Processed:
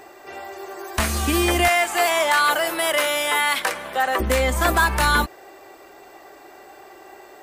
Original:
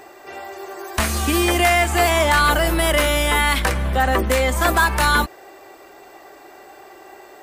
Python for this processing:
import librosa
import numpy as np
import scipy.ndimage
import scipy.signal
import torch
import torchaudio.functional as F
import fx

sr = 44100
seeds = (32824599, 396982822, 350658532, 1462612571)

y = fx.highpass(x, sr, hz=470.0, slope=12, at=(1.68, 4.2))
y = F.gain(torch.from_numpy(y), -1.5).numpy()